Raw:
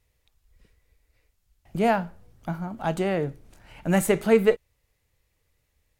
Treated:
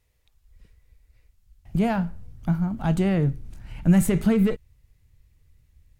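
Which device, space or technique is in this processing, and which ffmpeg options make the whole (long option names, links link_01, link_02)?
soft clipper into limiter: -af "asoftclip=type=tanh:threshold=-12dB,alimiter=limit=-17.5dB:level=0:latency=1:release=53,asubboost=boost=6.5:cutoff=210"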